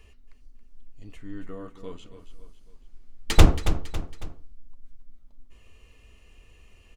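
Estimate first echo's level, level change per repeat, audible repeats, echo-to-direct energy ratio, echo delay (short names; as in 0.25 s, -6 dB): -11.0 dB, -7.0 dB, 3, -10.0 dB, 0.276 s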